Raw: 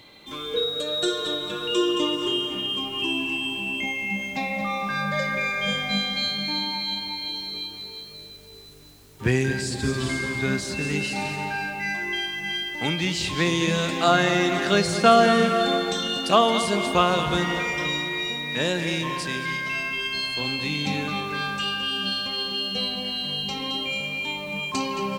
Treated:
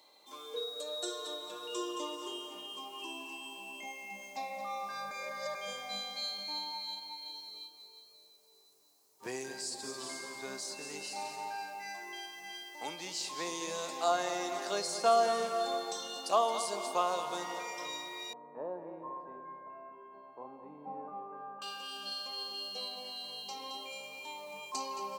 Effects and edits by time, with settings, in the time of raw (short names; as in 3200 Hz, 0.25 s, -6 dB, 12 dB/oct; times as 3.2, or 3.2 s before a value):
5.11–5.55 reverse
6.43–9.23 upward expander, over -39 dBFS
18.33–21.62 LPF 1100 Hz 24 dB/oct
whole clip: HPF 660 Hz 12 dB/oct; band shelf 2200 Hz -12 dB; gain -6 dB